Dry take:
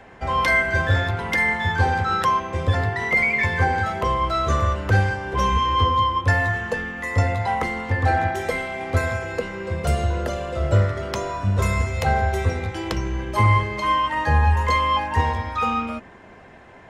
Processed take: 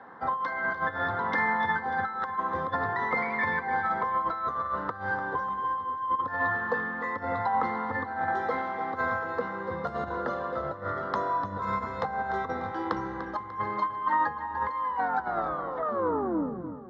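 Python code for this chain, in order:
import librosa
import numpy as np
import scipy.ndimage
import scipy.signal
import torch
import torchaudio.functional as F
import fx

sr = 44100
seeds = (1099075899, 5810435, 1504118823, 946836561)

y = fx.tape_stop_end(x, sr, length_s=2.07)
y = fx.high_shelf_res(y, sr, hz=2000.0, db=-11.5, q=3.0)
y = fx.over_compress(y, sr, threshold_db=-21.0, ratio=-0.5)
y = fx.cabinet(y, sr, low_hz=270.0, low_slope=12, high_hz=4600.0, hz=(380.0, 630.0, 1500.0, 2400.0, 3700.0), db=(-9, -10, -7, -9, 7))
y = fx.echo_feedback(y, sr, ms=296, feedback_pct=47, wet_db=-12)
y = F.gain(torch.from_numpy(y), -2.0).numpy()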